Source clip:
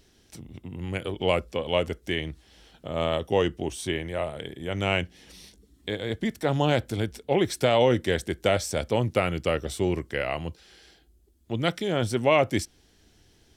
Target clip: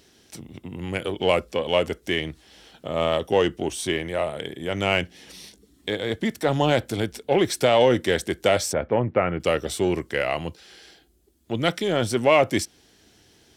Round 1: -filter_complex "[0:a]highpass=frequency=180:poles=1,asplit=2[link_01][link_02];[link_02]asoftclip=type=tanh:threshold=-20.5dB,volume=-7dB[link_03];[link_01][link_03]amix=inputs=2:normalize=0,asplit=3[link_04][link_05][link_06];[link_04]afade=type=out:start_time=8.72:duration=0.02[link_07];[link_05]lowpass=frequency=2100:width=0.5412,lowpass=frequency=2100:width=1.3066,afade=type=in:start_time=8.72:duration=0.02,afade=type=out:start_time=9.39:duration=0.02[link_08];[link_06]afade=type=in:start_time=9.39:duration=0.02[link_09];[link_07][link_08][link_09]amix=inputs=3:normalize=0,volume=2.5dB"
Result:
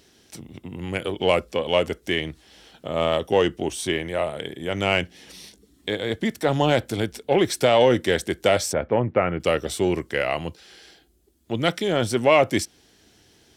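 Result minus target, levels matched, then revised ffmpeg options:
soft clipping: distortion −4 dB
-filter_complex "[0:a]highpass=frequency=180:poles=1,asplit=2[link_01][link_02];[link_02]asoftclip=type=tanh:threshold=-26.5dB,volume=-7dB[link_03];[link_01][link_03]amix=inputs=2:normalize=0,asplit=3[link_04][link_05][link_06];[link_04]afade=type=out:start_time=8.72:duration=0.02[link_07];[link_05]lowpass=frequency=2100:width=0.5412,lowpass=frequency=2100:width=1.3066,afade=type=in:start_time=8.72:duration=0.02,afade=type=out:start_time=9.39:duration=0.02[link_08];[link_06]afade=type=in:start_time=9.39:duration=0.02[link_09];[link_07][link_08][link_09]amix=inputs=3:normalize=0,volume=2.5dB"

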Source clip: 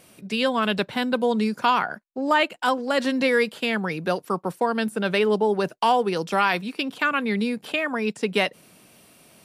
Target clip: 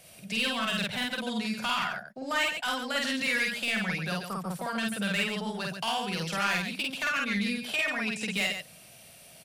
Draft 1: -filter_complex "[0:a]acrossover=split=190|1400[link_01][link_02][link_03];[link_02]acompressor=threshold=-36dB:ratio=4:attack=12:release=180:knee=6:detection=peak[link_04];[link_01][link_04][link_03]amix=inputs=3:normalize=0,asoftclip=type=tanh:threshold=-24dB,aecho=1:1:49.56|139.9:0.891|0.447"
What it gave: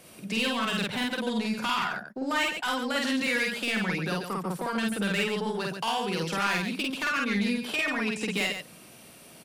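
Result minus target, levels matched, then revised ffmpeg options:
500 Hz band +3.0 dB
-filter_complex "[0:a]acrossover=split=190|1400[link_01][link_02][link_03];[link_02]acompressor=threshold=-36dB:ratio=4:attack=12:release=180:knee=6:detection=peak,bandpass=frequency=660:width_type=q:width=3.1:csg=0[link_04];[link_01][link_04][link_03]amix=inputs=3:normalize=0,asoftclip=type=tanh:threshold=-24dB,aecho=1:1:49.56|139.9:0.891|0.447"

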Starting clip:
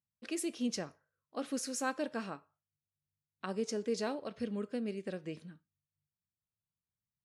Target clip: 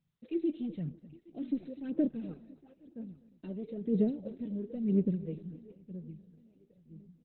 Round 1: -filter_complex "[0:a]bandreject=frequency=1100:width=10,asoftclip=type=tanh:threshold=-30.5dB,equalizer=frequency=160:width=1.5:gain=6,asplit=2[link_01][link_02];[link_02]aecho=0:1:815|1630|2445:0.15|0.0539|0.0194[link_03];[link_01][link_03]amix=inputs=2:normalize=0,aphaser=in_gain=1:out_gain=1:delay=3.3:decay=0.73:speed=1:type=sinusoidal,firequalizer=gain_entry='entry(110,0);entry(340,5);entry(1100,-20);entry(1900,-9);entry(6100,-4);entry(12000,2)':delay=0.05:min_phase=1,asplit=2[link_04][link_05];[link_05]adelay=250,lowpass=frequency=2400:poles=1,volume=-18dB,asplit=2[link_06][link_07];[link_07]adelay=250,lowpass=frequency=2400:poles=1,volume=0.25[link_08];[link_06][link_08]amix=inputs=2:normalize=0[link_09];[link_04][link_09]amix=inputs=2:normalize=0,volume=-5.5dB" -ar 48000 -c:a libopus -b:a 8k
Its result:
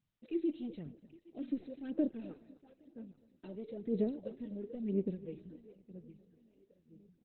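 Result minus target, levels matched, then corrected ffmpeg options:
125 Hz band −4.0 dB
-filter_complex "[0:a]bandreject=frequency=1100:width=10,asoftclip=type=tanh:threshold=-30.5dB,equalizer=frequency=160:width=1.5:gain=17,asplit=2[link_01][link_02];[link_02]aecho=0:1:815|1630|2445:0.15|0.0539|0.0194[link_03];[link_01][link_03]amix=inputs=2:normalize=0,aphaser=in_gain=1:out_gain=1:delay=3.3:decay=0.73:speed=1:type=sinusoidal,firequalizer=gain_entry='entry(110,0);entry(340,5);entry(1100,-20);entry(1900,-9);entry(6100,-4);entry(12000,2)':delay=0.05:min_phase=1,asplit=2[link_04][link_05];[link_05]adelay=250,lowpass=frequency=2400:poles=1,volume=-18dB,asplit=2[link_06][link_07];[link_07]adelay=250,lowpass=frequency=2400:poles=1,volume=0.25[link_08];[link_06][link_08]amix=inputs=2:normalize=0[link_09];[link_04][link_09]amix=inputs=2:normalize=0,volume=-5.5dB" -ar 48000 -c:a libopus -b:a 8k

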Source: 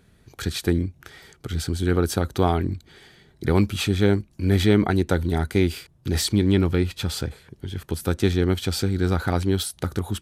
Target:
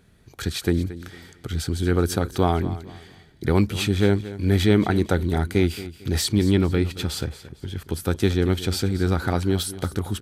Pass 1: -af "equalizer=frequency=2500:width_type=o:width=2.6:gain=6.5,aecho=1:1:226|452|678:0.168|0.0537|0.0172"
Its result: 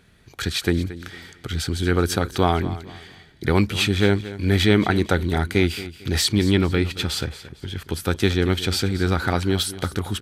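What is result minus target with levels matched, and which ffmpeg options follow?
2,000 Hz band +4.5 dB
-af "aecho=1:1:226|452|678:0.168|0.0537|0.0172"

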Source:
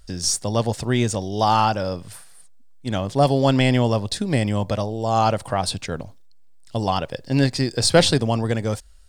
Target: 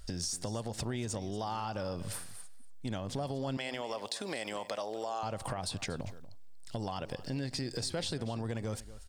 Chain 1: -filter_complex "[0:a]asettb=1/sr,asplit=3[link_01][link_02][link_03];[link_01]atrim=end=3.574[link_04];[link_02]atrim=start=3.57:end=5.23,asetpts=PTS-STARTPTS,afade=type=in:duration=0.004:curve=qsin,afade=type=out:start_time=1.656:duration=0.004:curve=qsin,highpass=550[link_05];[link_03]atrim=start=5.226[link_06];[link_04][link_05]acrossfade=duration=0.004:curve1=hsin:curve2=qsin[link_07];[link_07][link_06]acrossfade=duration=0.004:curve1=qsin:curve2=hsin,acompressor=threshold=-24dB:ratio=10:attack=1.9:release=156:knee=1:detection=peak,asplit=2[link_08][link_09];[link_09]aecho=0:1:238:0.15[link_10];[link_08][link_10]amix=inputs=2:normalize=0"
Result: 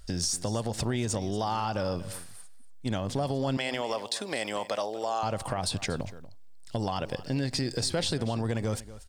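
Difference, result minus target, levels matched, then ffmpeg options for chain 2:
downward compressor: peak gain reduction −7 dB
-filter_complex "[0:a]asettb=1/sr,asplit=3[link_01][link_02][link_03];[link_01]atrim=end=3.574[link_04];[link_02]atrim=start=3.57:end=5.23,asetpts=PTS-STARTPTS,afade=type=in:duration=0.004:curve=qsin,afade=type=out:start_time=1.656:duration=0.004:curve=qsin,highpass=550[link_05];[link_03]atrim=start=5.226[link_06];[link_04][link_05]acrossfade=duration=0.004:curve1=hsin:curve2=qsin[link_07];[link_07][link_06]acrossfade=duration=0.004:curve1=qsin:curve2=hsin,acompressor=threshold=-31.5dB:ratio=10:attack=1.9:release=156:knee=1:detection=peak,asplit=2[link_08][link_09];[link_09]aecho=0:1:238:0.15[link_10];[link_08][link_10]amix=inputs=2:normalize=0"

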